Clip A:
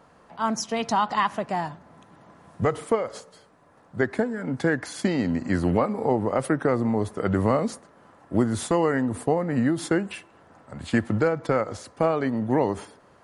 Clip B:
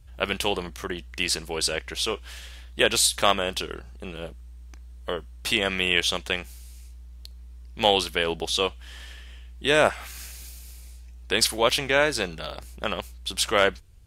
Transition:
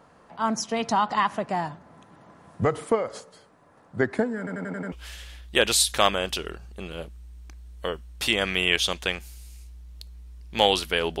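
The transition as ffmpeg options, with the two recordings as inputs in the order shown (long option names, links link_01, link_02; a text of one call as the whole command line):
ffmpeg -i cue0.wav -i cue1.wav -filter_complex "[0:a]apad=whole_dur=11.2,atrim=end=11.2,asplit=6[link_01][link_02][link_03][link_04][link_05][link_06];[link_01]atrim=end=4.472[link_07];[link_02]atrim=start=4.378:end=4.472[link_08];[link_03]atrim=start=4.378:end=4.472[link_09];[link_04]atrim=start=4.378:end=4.472[link_10];[link_05]atrim=start=4.378:end=4.472[link_11];[link_06]atrim=start=4.378:end=4.472[link_12];[1:a]atrim=start=2.158:end=8.44[link_13];[link_07][link_08]acrossfade=duration=0.004:curve1=hsin:curve2=hsin[link_14];[link_14][link_09]acrossfade=duration=0.004:curve1=hsin:curve2=hsin[link_15];[link_15][link_10]acrossfade=duration=0.004:curve1=hsin:curve2=hsin[link_16];[link_16][link_11]acrossfade=duration=0.004:curve1=hsin:curve2=hsin[link_17];[link_17][link_12]acrossfade=duration=0.004:curve1=hsin:curve2=hsin[link_18];[link_18][link_13]acrossfade=duration=0.004:curve1=hsin:curve2=hsin" out.wav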